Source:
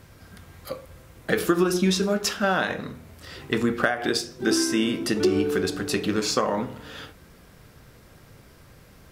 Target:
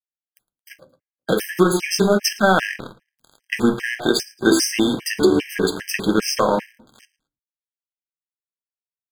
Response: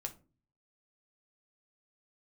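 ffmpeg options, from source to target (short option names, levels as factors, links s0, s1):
-filter_complex "[0:a]highpass=130,equalizer=f=12000:w=1.1:g=2.5,aeval=exprs='sgn(val(0))*max(abs(val(0))-0.0211,0)':c=same,aecho=1:1:111|222:0.0794|0.023,asplit=2[s0][s1];[1:a]atrim=start_sample=2205[s2];[s1][s2]afir=irnorm=-1:irlink=0,volume=1.06[s3];[s0][s3]amix=inputs=2:normalize=0,alimiter=level_in=1.68:limit=0.891:release=50:level=0:latency=1,afftfilt=real='re*gt(sin(2*PI*2.5*pts/sr)*(1-2*mod(floor(b*sr/1024/1600),2)),0)':imag='im*gt(sin(2*PI*2.5*pts/sr)*(1-2*mod(floor(b*sr/1024/1600),2)),0)':win_size=1024:overlap=0.75"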